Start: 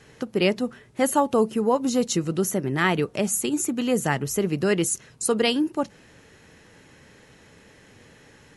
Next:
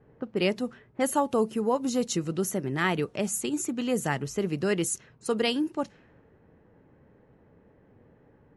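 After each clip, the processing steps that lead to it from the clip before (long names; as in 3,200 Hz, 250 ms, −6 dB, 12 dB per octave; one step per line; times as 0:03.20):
low-pass that shuts in the quiet parts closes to 760 Hz, open at −20 dBFS
level −4.5 dB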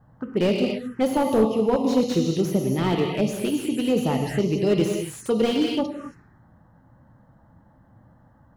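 reverb whose tail is shaped and stops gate 300 ms flat, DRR 3 dB
phaser swept by the level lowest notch 400 Hz, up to 1,600 Hz, full sweep at −24 dBFS
slew-rate limiting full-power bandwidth 48 Hz
level +6 dB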